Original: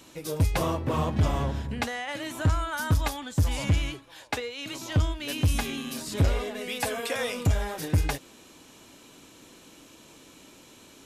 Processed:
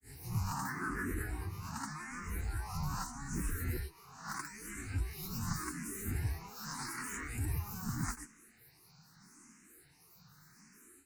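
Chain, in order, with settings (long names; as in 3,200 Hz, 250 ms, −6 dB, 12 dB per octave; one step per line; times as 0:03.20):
peak hold with a rise ahead of every peak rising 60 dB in 0.84 s
graphic EQ with 10 bands 125 Hz −6 dB, 250 Hz +7 dB, 500 Hz −10 dB, 1,000 Hz +6 dB, 8,000 Hz +11 dB
granular cloud 193 ms, pitch spread up and down by 12 semitones
phaser with its sweep stopped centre 1,400 Hz, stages 4
frequency shifter mixed with the dry sound +0.82 Hz
level −5.5 dB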